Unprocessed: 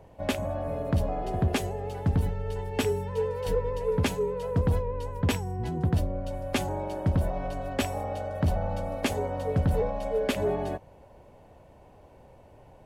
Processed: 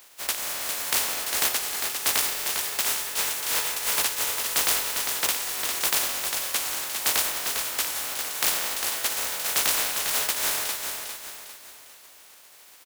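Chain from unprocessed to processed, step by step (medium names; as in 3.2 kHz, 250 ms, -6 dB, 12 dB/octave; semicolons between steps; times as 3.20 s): spectral contrast reduction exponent 0.11; high-pass 70 Hz 6 dB/octave; peaking EQ 130 Hz -15 dB 2.6 oct; on a send: feedback delay 402 ms, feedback 42%, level -6 dB; on the sum: trim +1 dB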